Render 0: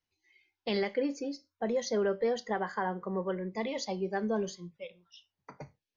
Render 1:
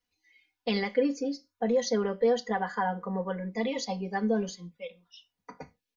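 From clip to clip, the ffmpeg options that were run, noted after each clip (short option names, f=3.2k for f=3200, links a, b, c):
-af "aecho=1:1:4.1:0.99"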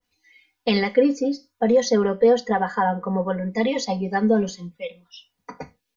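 -af "adynamicequalizer=threshold=0.00631:dfrequency=1600:dqfactor=0.7:tfrequency=1600:tqfactor=0.7:attack=5:release=100:ratio=0.375:range=2.5:mode=cutabove:tftype=highshelf,volume=8.5dB"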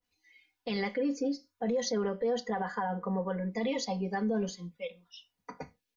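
-af "alimiter=limit=-16.5dB:level=0:latency=1:release=39,volume=-7dB"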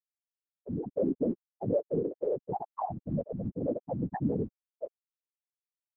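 -af "afftfilt=real='re*gte(hypot(re,im),0.178)':imag='im*gte(hypot(re,im),0.178)':win_size=1024:overlap=0.75,afftfilt=real='hypot(re,im)*cos(2*PI*random(0))':imag='hypot(re,im)*sin(2*PI*random(1))':win_size=512:overlap=0.75,volume=7.5dB"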